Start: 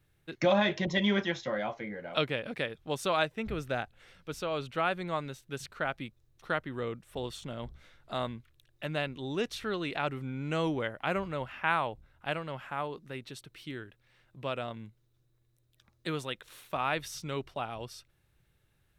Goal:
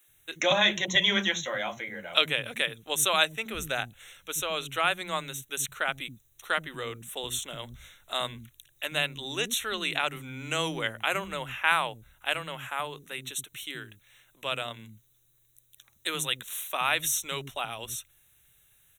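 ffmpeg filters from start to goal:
-filter_complex "[0:a]asuperstop=centerf=4800:order=8:qfactor=2.7,crystalizer=i=9.5:c=0,acrossover=split=260[a][b];[a]adelay=80[c];[c][b]amix=inputs=2:normalize=0,volume=-2.5dB"

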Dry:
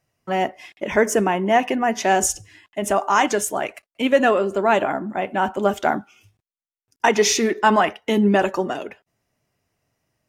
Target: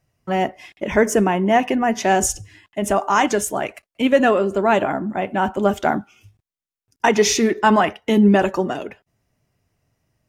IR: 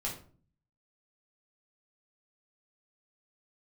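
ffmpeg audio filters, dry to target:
-af "lowshelf=f=180:g=10"

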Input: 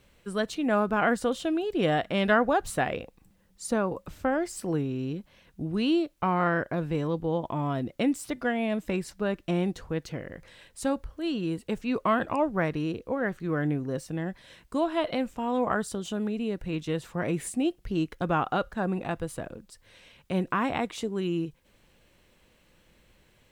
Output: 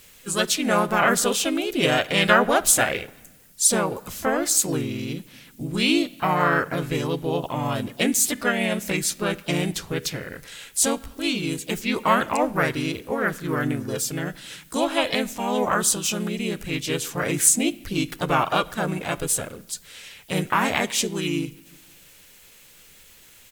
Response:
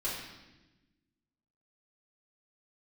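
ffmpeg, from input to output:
-filter_complex "[0:a]crystalizer=i=7.5:c=0,asplit=2[a][b];[1:a]atrim=start_sample=2205,asetrate=41454,aresample=44100[c];[b][c]afir=irnorm=-1:irlink=0,volume=-22dB[d];[a][d]amix=inputs=2:normalize=0,asplit=3[e][f][g];[f]asetrate=37084,aresample=44100,atempo=1.18921,volume=-1dB[h];[g]asetrate=55563,aresample=44100,atempo=0.793701,volume=-18dB[i];[e][h][i]amix=inputs=3:normalize=0,volume=-1dB"

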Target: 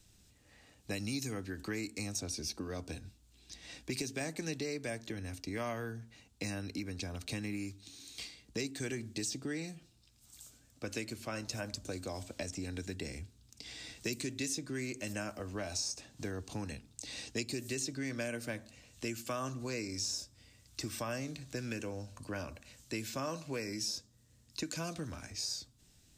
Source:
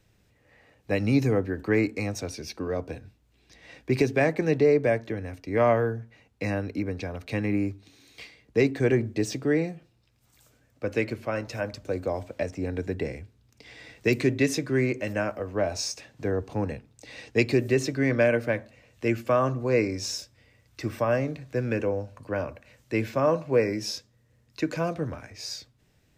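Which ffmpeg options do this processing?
-filter_complex "[0:a]equalizer=f=125:t=o:w=1:g=-6,equalizer=f=500:t=o:w=1:g=-10,equalizer=f=1k:t=o:w=1:g=-4,equalizer=f=2k:t=o:w=1:g=-8,equalizer=f=4k:t=o:w=1:g=3,equalizer=f=8k:t=o:w=1:g=8,acrossover=split=1400|6000[a][b][c];[a]acompressor=threshold=-41dB:ratio=4[d];[b]acompressor=threshold=-46dB:ratio=4[e];[c]acompressor=threshold=-45dB:ratio=4[f];[d][e][f]amix=inputs=3:normalize=0,volume=2.5dB"

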